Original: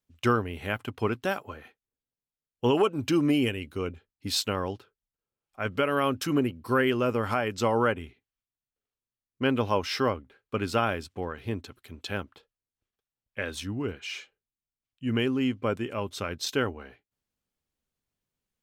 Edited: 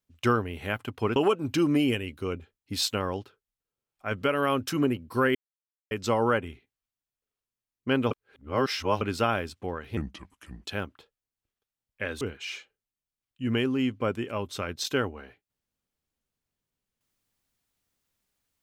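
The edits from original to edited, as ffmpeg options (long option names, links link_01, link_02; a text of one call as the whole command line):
ffmpeg -i in.wav -filter_complex "[0:a]asplit=9[link_01][link_02][link_03][link_04][link_05][link_06][link_07][link_08][link_09];[link_01]atrim=end=1.162[link_10];[link_02]atrim=start=2.698:end=6.89,asetpts=PTS-STARTPTS,afade=type=out:start_time=4.188:duration=0.004:curve=hsin[link_11];[link_03]atrim=start=6.89:end=7.45,asetpts=PTS-STARTPTS,volume=0[link_12];[link_04]atrim=start=7.45:end=9.652,asetpts=PTS-STARTPTS,afade=type=in:duration=0.004:curve=hsin[link_13];[link_05]atrim=start=9.648:end=10.552,asetpts=PTS-STARTPTS,areverse[link_14];[link_06]atrim=start=10.548:end=11.514[link_15];[link_07]atrim=start=11.51:end=12.02,asetpts=PTS-STARTPTS,asetrate=33075,aresample=44100[link_16];[link_08]atrim=start=12.016:end=13.582[link_17];[link_09]atrim=start=13.828[link_18];[link_11][link_12][link_13]concat=n=3:v=0:a=1[link_19];[link_10][link_19]acrossfade=duration=0.004:curve1=hsin:curve2=hsin[link_20];[link_20][link_14]acrossfade=duration=0.004:curve1=hsin:curve2=hsin[link_21];[link_21][link_15]acrossfade=duration=0.004:curve1=hsin:curve2=hsin[link_22];[link_22][link_16]acrossfade=duration=0.004:curve1=hsin:curve2=hsin[link_23];[link_23][link_17]acrossfade=duration=0.004:curve1=hsin:curve2=hsin[link_24];[link_24][link_18]acrossfade=duration=0.004:curve1=hsin:curve2=hsin" out.wav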